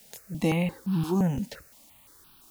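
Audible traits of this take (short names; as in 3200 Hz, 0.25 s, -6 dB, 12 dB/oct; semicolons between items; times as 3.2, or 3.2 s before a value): a quantiser's noise floor 10-bit, dither triangular; notches that jump at a steady rate 5.8 Hz 310–2000 Hz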